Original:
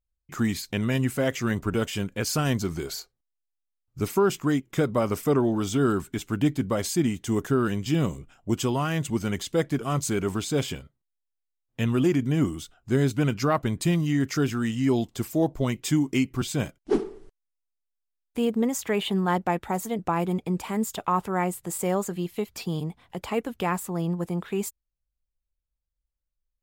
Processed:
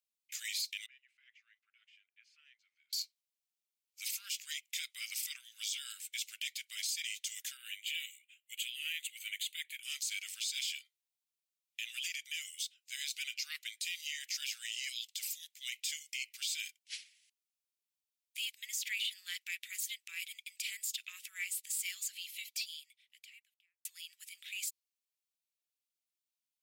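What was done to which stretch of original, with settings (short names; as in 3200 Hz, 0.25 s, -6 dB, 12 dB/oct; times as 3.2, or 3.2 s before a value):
0.86–2.93 Chebyshev band-pass 130–620 Hz
7.57–9.83 fixed phaser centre 2300 Hz, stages 4
22.33–23.85 studio fade out
whole clip: steep high-pass 2200 Hz 48 dB/oct; dynamic EQ 4600 Hz, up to +5 dB, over -52 dBFS, Q 1.9; limiter -30 dBFS; gain +3 dB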